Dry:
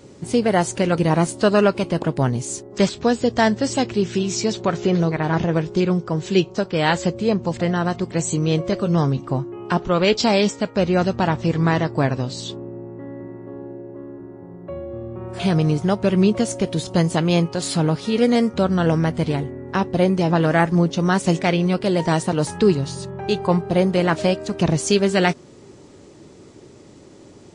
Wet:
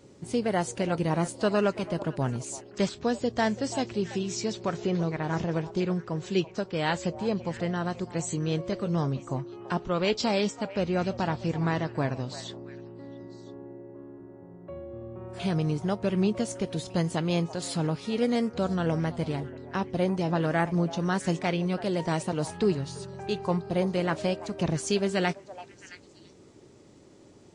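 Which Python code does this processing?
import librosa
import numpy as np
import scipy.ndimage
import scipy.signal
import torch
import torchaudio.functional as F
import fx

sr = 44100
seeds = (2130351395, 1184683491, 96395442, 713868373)

y = fx.echo_stepped(x, sr, ms=334, hz=750.0, octaves=1.4, feedback_pct=70, wet_db=-11.5)
y = y * 10.0 ** (-9.0 / 20.0)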